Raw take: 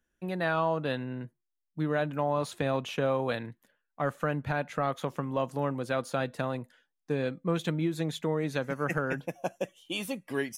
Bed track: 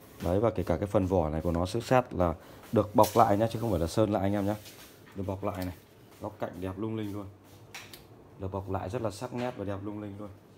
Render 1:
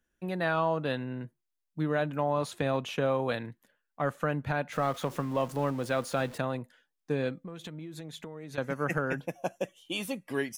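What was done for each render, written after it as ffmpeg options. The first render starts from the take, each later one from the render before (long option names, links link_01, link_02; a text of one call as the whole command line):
ffmpeg -i in.wav -filter_complex "[0:a]asettb=1/sr,asplit=3[link_01][link_02][link_03];[link_01]atrim=end=4.724[link_04];[link_02]atrim=start=4.72:end=6.38,asetpts=PTS-STARTPTS,afade=type=in:duration=0.004:curve=qsin,afade=type=out:start_time=1.656:duration=0.004:curve=qsin,aeval=exprs='val(0)+0.5*0.00708*sgn(val(0))':channel_layout=same[link_05];[link_03]atrim=start=6.376[link_06];[link_04][link_05]acrossfade=duration=0.004:curve1=hsin:curve2=qsin[link_07];[link_07][link_06]acrossfade=duration=0.004:curve1=qsin:curve2=hsin,asettb=1/sr,asplit=3[link_08][link_09][link_10];[link_08]atrim=end=7.374[link_11];[link_09]atrim=start=7.37:end=8.58,asetpts=PTS-STARTPTS,afade=type=in:duration=0.004:curve=qsin,afade=type=out:start_time=1.206:duration=0.004:curve=qsin,acompressor=threshold=-38dB:ratio=10:attack=3.2:release=140:knee=1:detection=peak[link_12];[link_10]atrim=start=8.576[link_13];[link_11][link_12]acrossfade=duration=0.004:curve1=hsin:curve2=qsin[link_14];[link_14][link_13]acrossfade=duration=0.004:curve1=qsin:curve2=hsin" out.wav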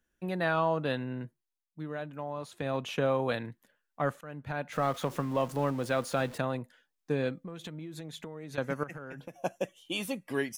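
ffmpeg -i in.wav -filter_complex "[0:a]asettb=1/sr,asplit=3[link_01][link_02][link_03];[link_01]atrim=end=8.834[link_04];[link_02]atrim=start=8.83:end=9.42,asetpts=PTS-STARTPTS,afade=type=in:duration=0.004:curve=qsin,afade=type=out:start_time=0.586:duration=0.004:curve=qsin,acompressor=threshold=-38dB:ratio=12:attack=3.2:release=140:knee=1:detection=peak[link_05];[link_03]atrim=start=9.416[link_06];[link_04][link_05]acrossfade=duration=0.004:curve1=hsin:curve2=qsin[link_07];[link_07][link_06]acrossfade=duration=0.004:curve1=qsin:curve2=hsin,asplit=4[link_08][link_09][link_10][link_11];[link_08]atrim=end=1.67,asetpts=PTS-STARTPTS,afade=type=out:start_time=1.23:duration=0.44:silence=0.354813[link_12];[link_09]atrim=start=1.67:end=2.49,asetpts=PTS-STARTPTS,volume=-9dB[link_13];[link_10]atrim=start=2.49:end=4.21,asetpts=PTS-STARTPTS,afade=type=in:duration=0.44:silence=0.354813,afade=type=out:start_time=1.716:duration=0.004:curve=hsin:silence=0.0891251[link_14];[link_11]atrim=start=4.21,asetpts=PTS-STARTPTS,afade=type=in:duration=0.63:silence=0.0891251[link_15];[link_12][link_13][link_14][link_15]concat=n=4:v=0:a=1" out.wav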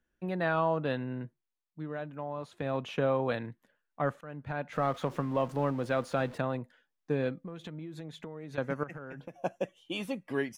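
ffmpeg -i in.wav -af "lowpass=frequency=2600:poles=1" out.wav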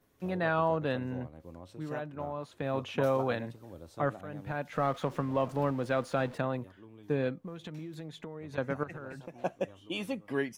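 ffmpeg -i in.wav -i bed.wav -filter_complex "[1:a]volume=-19dB[link_01];[0:a][link_01]amix=inputs=2:normalize=0" out.wav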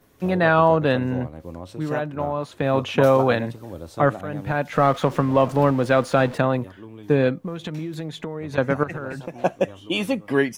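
ffmpeg -i in.wav -af "volume=12dB" out.wav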